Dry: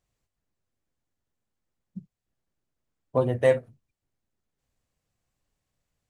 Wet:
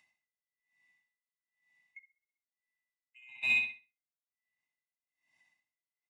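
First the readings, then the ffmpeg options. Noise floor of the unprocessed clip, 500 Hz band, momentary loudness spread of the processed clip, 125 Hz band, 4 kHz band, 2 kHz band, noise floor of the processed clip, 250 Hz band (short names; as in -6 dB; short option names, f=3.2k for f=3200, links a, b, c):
-85 dBFS, under -40 dB, 8 LU, under -30 dB, +4.0 dB, +7.0 dB, under -85 dBFS, -26.0 dB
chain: -filter_complex "[0:a]afftfilt=real='real(if(lt(b,920),b+92*(1-2*mod(floor(b/92),2)),b),0)':imag='imag(if(lt(b,920),b+92*(1-2*mod(floor(b/92),2)),b),0)':win_size=2048:overlap=0.75,agate=range=-39dB:threshold=-51dB:ratio=16:detection=peak,aresample=22050,aresample=44100,acrossover=split=480|1200[a][b][c];[b]asoftclip=type=hard:threshold=-38dB[d];[a][d][c]amix=inputs=3:normalize=0,acompressor=threshold=-23dB:ratio=6,highshelf=f=2.2k:g=-5.5,aecho=1:1:1.1:0.82,aecho=1:1:64|128|192|256|320|384:0.562|0.253|0.114|0.0512|0.0231|0.0104,asplit=2[e][f];[f]asoftclip=type=tanh:threshold=-28.5dB,volume=-11dB[g];[e][g]amix=inputs=2:normalize=0,highpass=140,acompressor=mode=upward:threshold=-39dB:ratio=2.5,aeval=exprs='val(0)*pow(10,-33*(0.5-0.5*cos(2*PI*1.1*n/s))/20)':c=same"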